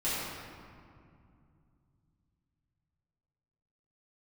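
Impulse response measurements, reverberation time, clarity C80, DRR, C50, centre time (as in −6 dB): 2.4 s, −1.5 dB, −11.5 dB, −4.0 dB, 147 ms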